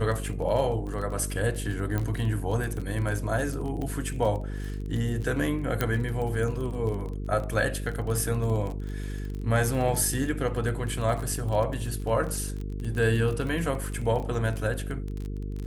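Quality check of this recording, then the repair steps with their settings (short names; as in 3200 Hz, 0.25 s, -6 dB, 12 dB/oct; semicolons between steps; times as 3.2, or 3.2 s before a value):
buzz 50 Hz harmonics 9 -33 dBFS
crackle 26/s -31 dBFS
1.98 pop -16 dBFS
3.82 pop -23 dBFS
5.81 pop -11 dBFS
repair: de-click; de-hum 50 Hz, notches 9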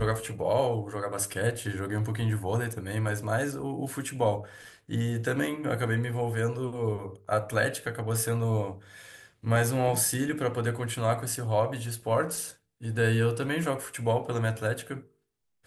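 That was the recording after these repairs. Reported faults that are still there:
1.98 pop
5.81 pop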